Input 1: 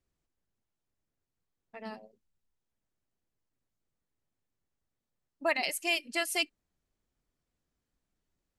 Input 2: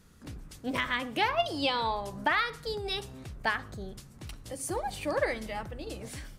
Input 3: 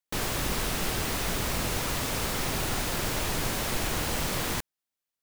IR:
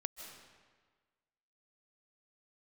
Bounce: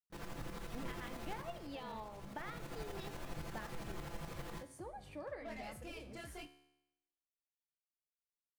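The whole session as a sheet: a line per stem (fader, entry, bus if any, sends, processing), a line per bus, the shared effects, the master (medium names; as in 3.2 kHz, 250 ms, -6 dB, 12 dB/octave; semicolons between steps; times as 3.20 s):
-16.5 dB, 0.00 s, no send, waveshaping leveller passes 5; chorus 0.89 Hz, delay 19.5 ms, depth 8 ms
-4.5 dB, 0.10 s, no send, compression 2:1, threshold -35 dBFS, peak gain reduction 7.5 dB
-4.5 dB, 0.00 s, no send, chorus 0.86 Hz, delay 18.5 ms, depth 7.9 ms; comb 5.9 ms, depth 77%; tremolo saw up 12 Hz, depth 65%; auto duck -10 dB, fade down 0.45 s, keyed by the first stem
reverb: none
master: treble shelf 2.3 kHz -11.5 dB; feedback comb 72 Hz, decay 0.87 s, harmonics all, mix 60%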